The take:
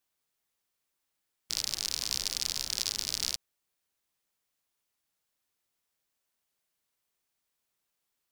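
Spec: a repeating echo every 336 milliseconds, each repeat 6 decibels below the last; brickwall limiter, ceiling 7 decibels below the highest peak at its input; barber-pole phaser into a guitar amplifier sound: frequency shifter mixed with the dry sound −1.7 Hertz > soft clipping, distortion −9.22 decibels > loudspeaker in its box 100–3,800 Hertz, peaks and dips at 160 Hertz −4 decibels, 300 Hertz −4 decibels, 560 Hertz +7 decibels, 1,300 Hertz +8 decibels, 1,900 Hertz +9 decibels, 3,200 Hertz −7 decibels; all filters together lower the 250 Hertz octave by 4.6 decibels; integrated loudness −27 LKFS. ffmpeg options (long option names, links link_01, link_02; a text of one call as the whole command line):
ffmpeg -i in.wav -filter_complex "[0:a]equalizer=frequency=250:width_type=o:gain=-3.5,alimiter=limit=-16dB:level=0:latency=1,aecho=1:1:336|672|1008|1344|1680|2016:0.501|0.251|0.125|0.0626|0.0313|0.0157,asplit=2[link_01][link_02];[link_02]afreqshift=-1.7[link_03];[link_01][link_03]amix=inputs=2:normalize=1,asoftclip=threshold=-28dB,highpass=100,equalizer=frequency=160:width_type=q:width=4:gain=-4,equalizer=frequency=300:width_type=q:width=4:gain=-4,equalizer=frequency=560:width_type=q:width=4:gain=7,equalizer=frequency=1300:width_type=q:width=4:gain=8,equalizer=frequency=1900:width_type=q:width=4:gain=9,equalizer=frequency=3200:width_type=q:width=4:gain=-7,lowpass=frequency=3800:width=0.5412,lowpass=frequency=3800:width=1.3066,volume=22dB" out.wav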